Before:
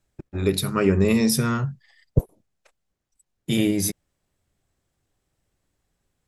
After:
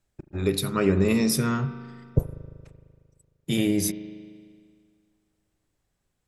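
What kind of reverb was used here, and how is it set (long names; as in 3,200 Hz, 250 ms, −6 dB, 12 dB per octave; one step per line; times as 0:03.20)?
spring reverb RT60 2 s, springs 38 ms, chirp 65 ms, DRR 11.5 dB
level −2.5 dB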